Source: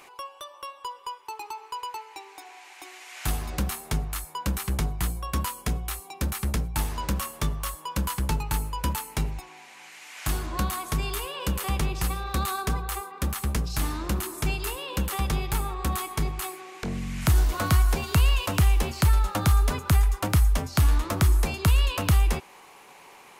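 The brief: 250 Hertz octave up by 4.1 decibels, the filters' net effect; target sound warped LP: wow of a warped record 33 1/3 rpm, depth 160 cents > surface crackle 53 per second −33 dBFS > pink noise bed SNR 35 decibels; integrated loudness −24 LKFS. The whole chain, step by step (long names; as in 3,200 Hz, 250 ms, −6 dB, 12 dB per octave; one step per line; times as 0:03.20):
parametric band 250 Hz +6 dB
wow of a warped record 33 1/3 rpm, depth 160 cents
surface crackle 53 per second −33 dBFS
pink noise bed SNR 35 dB
level +2.5 dB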